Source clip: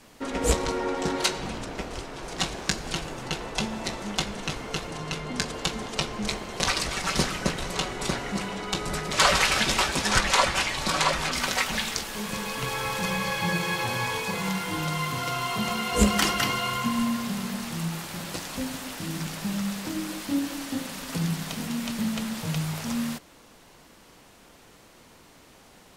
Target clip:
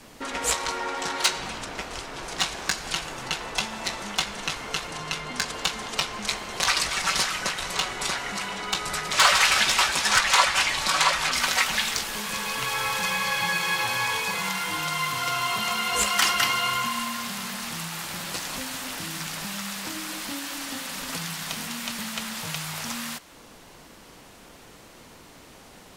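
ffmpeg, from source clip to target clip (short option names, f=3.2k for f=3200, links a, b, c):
-filter_complex "[0:a]acrossover=split=780|1300[a][b][c];[a]acompressor=threshold=-43dB:ratio=6[d];[c]asoftclip=type=tanh:threshold=-15.5dB[e];[d][b][e]amix=inputs=3:normalize=0,volume=4.5dB"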